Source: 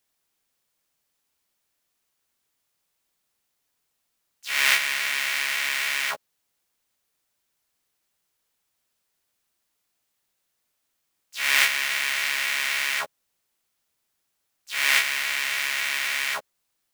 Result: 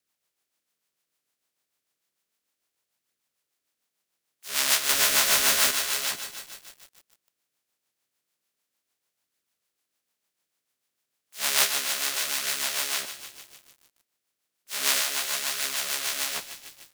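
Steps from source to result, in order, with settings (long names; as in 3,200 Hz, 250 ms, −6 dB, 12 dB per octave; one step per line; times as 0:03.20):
ceiling on every frequency bin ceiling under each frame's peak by 22 dB
high-pass filter 170 Hz 6 dB per octave
0:04.89–0:05.71: power curve on the samples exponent 0.5
flanger 0.32 Hz, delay 0.4 ms, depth 8.2 ms, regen −49%
rotating-speaker cabinet horn 6.7 Hz
repeating echo 156 ms, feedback 55%, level −24 dB
feedback echo at a low word length 150 ms, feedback 80%, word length 7 bits, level −11 dB
level +4 dB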